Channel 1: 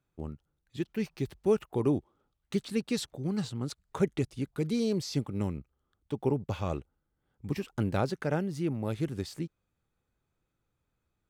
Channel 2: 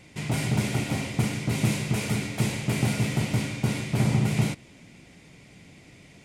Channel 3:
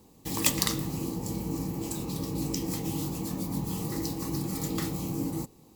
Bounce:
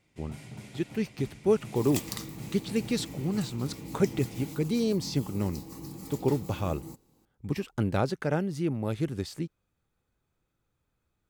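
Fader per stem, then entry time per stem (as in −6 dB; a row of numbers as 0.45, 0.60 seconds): +2.0, −19.0, −10.0 decibels; 0.00, 0.00, 1.50 seconds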